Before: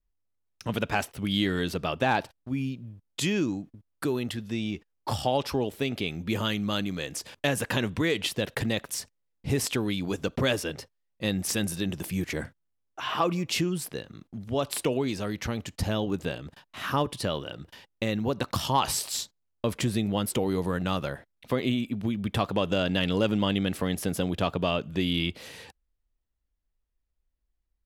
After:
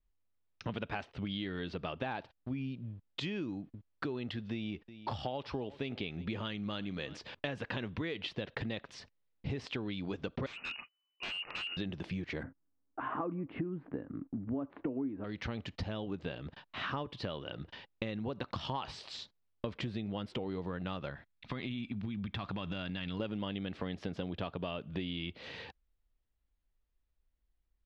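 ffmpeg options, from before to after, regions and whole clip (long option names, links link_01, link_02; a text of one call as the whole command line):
ffmpeg -i in.wav -filter_complex "[0:a]asettb=1/sr,asplit=3[link_01][link_02][link_03];[link_01]atrim=end=4.524[link_04];[link_02]atrim=start=4.52:end=7.17,asetpts=PTS-STARTPTS,afade=type=in:duration=0.004:curve=qsin,afade=type=out:start_time=2.646:duration=0.004:curve=qsin,aecho=1:1:361:0.0708,atrim=end_sample=116865,acompressor=mode=upward:threshold=-44dB:ratio=2.5:attack=3.2:release=140:knee=2.83:detection=peak[link_05];[link_03]atrim=start=7.166[link_06];[link_04][link_05]acrossfade=duration=0.004:curve1=hsin:curve2=qsin[link_07];[link_07][link_06]acrossfade=duration=0.004:curve1=qsin:curve2=hsin,asettb=1/sr,asplit=3[link_08][link_09][link_10];[link_08]atrim=end=10.464[link_11];[link_09]atrim=start=10.46:end=11.77,asetpts=PTS-STARTPTS,afade=type=in:duration=0.004:curve=qsin,afade=type=out:start_time=1.306:duration=0.004:curve=qsin,lowshelf=frequency=180:gain=-7,lowpass=frequency=2600:width_type=q:width=0.5098,lowpass=frequency=2600:width_type=q:width=0.6013,lowpass=frequency=2600:width_type=q:width=0.9,lowpass=frequency=2600:width_type=q:width=2.563,afreqshift=-3000,aeval=exprs='0.0266*(abs(mod(val(0)/0.0266+3,4)-2)-1)':channel_layout=same[link_12];[link_10]atrim=start=11.766[link_13];[link_11][link_12]acrossfade=duration=0.004:curve1=hsin:curve2=qsin[link_14];[link_14][link_13]acrossfade=duration=0.004:curve1=qsin:curve2=hsin,asettb=1/sr,asplit=3[link_15][link_16][link_17];[link_15]atrim=end=12.434[link_18];[link_16]atrim=start=12.43:end=15.24,asetpts=PTS-STARTPTS,afade=type=in:duration=0.004:curve=qsin,afade=type=out:start_time=2.806:duration=0.004:curve=qsin,lowpass=frequency=1600:width=0.5412,lowpass=frequency=1600:width=1.3066,equalizer=frequency=280:width_type=o:width=0.43:gain=15[link_19];[link_17]atrim=start=15.236[link_20];[link_18][link_19]acrossfade=duration=0.004:curve1=hsin:curve2=qsin[link_21];[link_21][link_20]acrossfade=duration=0.004:curve1=qsin:curve2=hsin,asettb=1/sr,asplit=3[link_22][link_23][link_24];[link_22]atrim=end=21.104[link_25];[link_23]atrim=start=21.1:end=23.2,asetpts=PTS-STARTPTS,afade=type=in:duration=0.004:curve=qsin,afade=type=out:start_time=2.096:duration=0.004:curve=qsin,equalizer=frequency=480:width=1.2:gain=-11.5,bandreject=frequency=3000:width=17,acompressor=threshold=-30dB:ratio=6:attack=3.2:release=140:knee=1:detection=peak[link_26];[link_24]atrim=start=23.196[link_27];[link_25][link_26]acrossfade=duration=0.004:curve1=hsin:curve2=qsin[link_28];[link_28][link_27]acrossfade=duration=0.004:curve1=qsin:curve2=hsin,acompressor=threshold=-35dB:ratio=6,lowpass=frequency=4200:width=0.5412,lowpass=frequency=4200:width=1.3066" out.wav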